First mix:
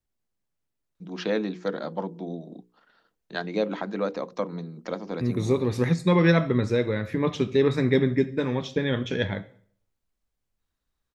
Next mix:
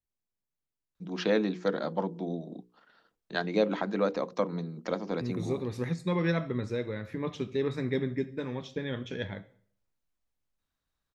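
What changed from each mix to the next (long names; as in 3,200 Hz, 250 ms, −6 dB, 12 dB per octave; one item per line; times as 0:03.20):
second voice −9.0 dB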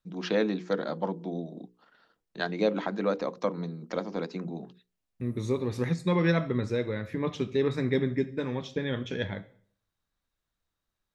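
first voice: entry −0.95 s
second voice +3.5 dB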